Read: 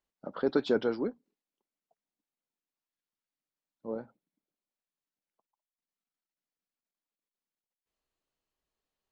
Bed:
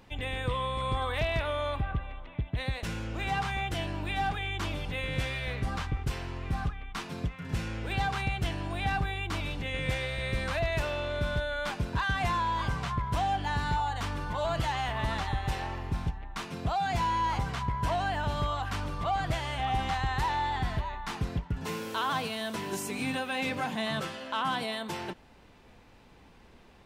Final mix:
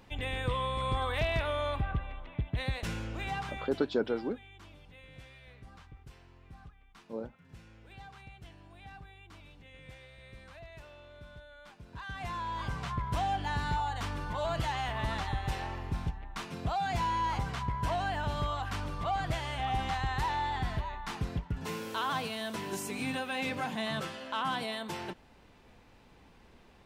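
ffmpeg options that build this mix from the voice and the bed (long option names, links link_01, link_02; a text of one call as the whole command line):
ffmpeg -i stem1.wav -i stem2.wav -filter_complex "[0:a]adelay=3250,volume=-2.5dB[link_01];[1:a]volume=16.5dB,afade=type=out:start_time=2.91:duration=0.97:silence=0.112202,afade=type=in:start_time=11.81:duration=1.27:silence=0.133352[link_02];[link_01][link_02]amix=inputs=2:normalize=0" out.wav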